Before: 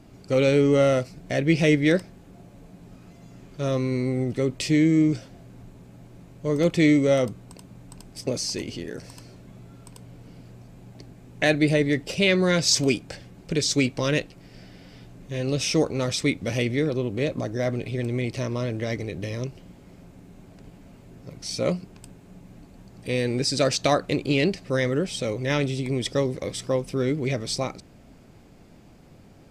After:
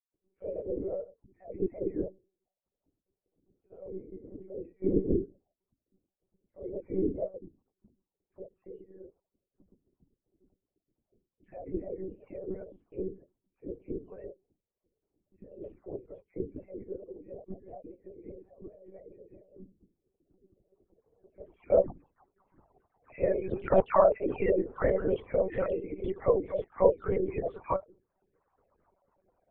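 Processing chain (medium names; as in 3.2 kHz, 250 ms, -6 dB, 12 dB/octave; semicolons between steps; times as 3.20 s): formants replaced by sine waves; gate -54 dBFS, range -8 dB; reverb removal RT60 0.87 s; bass shelf 310 Hz -9 dB; hum notches 50/100/150/200/250/300/350/400 Hz; vibrato 5.5 Hz 19 cents; low-pass sweep 190 Hz -> 1 kHz, 19.71–21.95 s; whisper effect; phase dispersion lows, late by 134 ms, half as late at 1.5 kHz; monotone LPC vocoder at 8 kHz 190 Hz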